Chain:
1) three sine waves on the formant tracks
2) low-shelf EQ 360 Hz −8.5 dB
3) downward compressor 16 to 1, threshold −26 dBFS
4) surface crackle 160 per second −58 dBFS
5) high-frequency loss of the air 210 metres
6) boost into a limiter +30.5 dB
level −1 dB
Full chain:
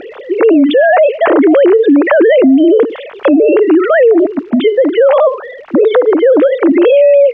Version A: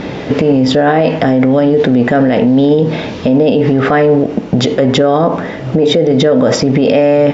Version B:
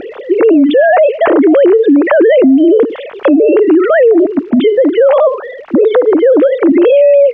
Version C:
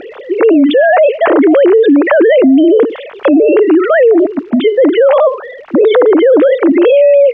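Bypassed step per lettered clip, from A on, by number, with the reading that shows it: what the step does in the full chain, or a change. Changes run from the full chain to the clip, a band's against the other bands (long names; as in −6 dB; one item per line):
1, 1 kHz band +3.5 dB
2, 2 kHz band −2.0 dB
3, average gain reduction 4.0 dB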